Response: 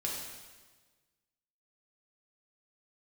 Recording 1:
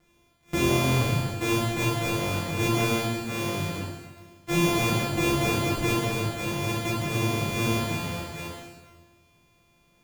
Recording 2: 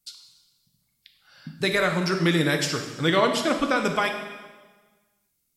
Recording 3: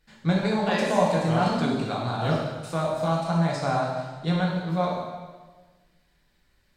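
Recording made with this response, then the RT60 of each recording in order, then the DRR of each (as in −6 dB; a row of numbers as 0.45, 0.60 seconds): 3; 1.4, 1.4, 1.4 seconds; −8.0, 4.0, −3.5 decibels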